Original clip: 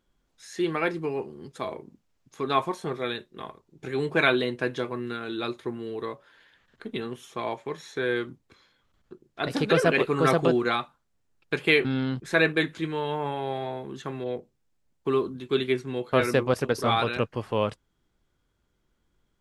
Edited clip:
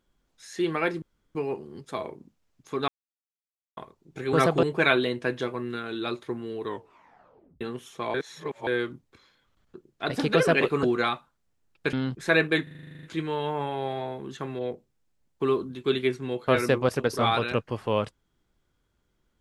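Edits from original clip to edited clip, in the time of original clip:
1.02 s: insert room tone 0.33 s
2.55–3.44 s: mute
6.01 s: tape stop 0.97 s
7.51–8.04 s: reverse
10.20–10.50 s: move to 4.00 s
11.60–11.98 s: delete
12.68 s: stutter 0.04 s, 11 plays

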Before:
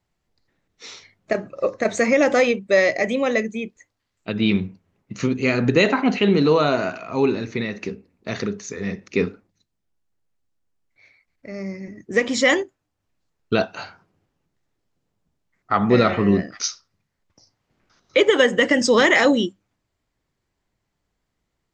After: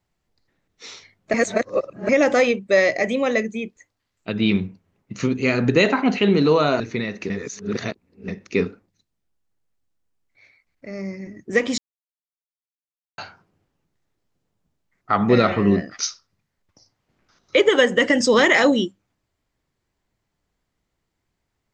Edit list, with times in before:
1.34–2.09 s: reverse
6.80–7.41 s: delete
7.91–8.89 s: reverse
12.39–13.79 s: mute

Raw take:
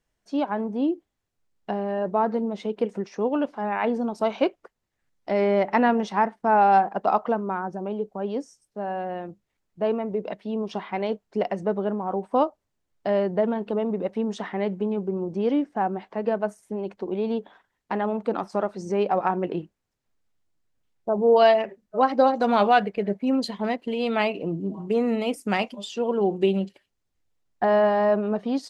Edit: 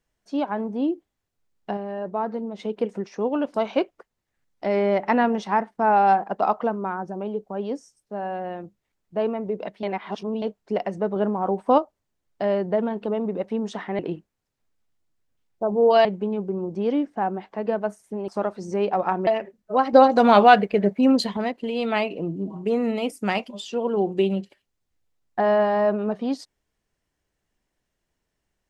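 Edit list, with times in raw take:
1.77–2.59 s: gain -4 dB
3.54–4.19 s: delete
10.48–11.07 s: reverse
11.81–12.43 s: gain +3.5 dB
16.87–18.46 s: delete
19.45–21.51 s: move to 14.64 s
22.17–23.61 s: gain +5.5 dB

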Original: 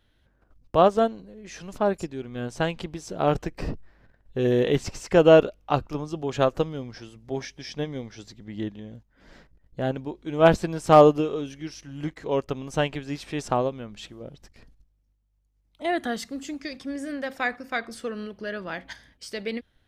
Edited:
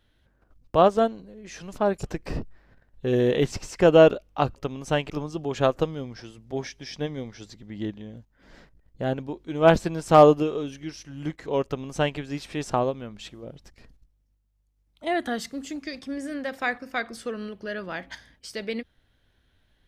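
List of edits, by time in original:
2.03–3.35 s: delete
12.42–12.96 s: copy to 5.88 s

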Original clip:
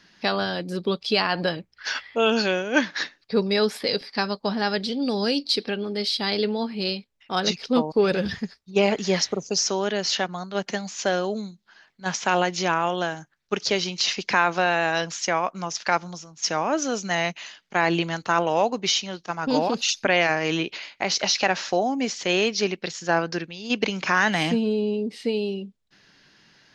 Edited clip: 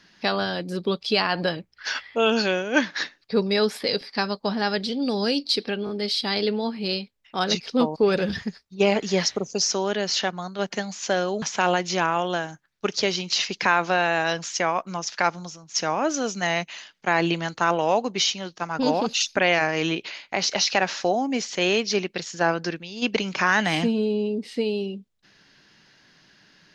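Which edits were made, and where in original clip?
5.85 s: stutter 0.02 s, 3 plays
11.38–12.10 s: delete

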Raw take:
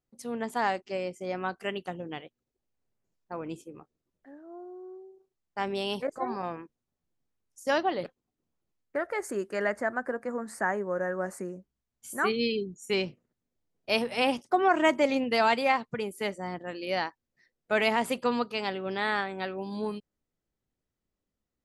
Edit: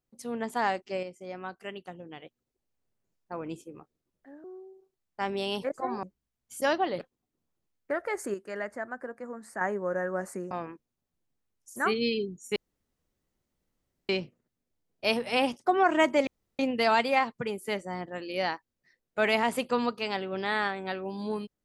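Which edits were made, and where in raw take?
1.03–2.22 s: gain -6.5 dB
4.44–4.82 s: delete
6.41–7.66 s: swap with 11.56–12.14 s
9.39–10.66 s: gain -6.5 dB
12.94 s: insert room tone 1.53 s
15.12 s: insert room tone 0.32 s

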